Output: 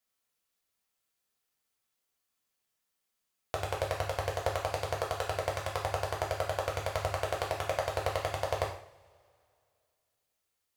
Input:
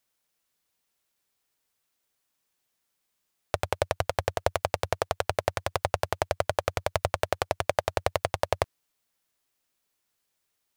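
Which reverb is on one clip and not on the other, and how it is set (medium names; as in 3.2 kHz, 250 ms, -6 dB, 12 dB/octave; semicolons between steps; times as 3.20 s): two-slope reverb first 0.51 s, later 2.5 s, from -25 dB, DRR -2.5 dB; trim -8.5 dB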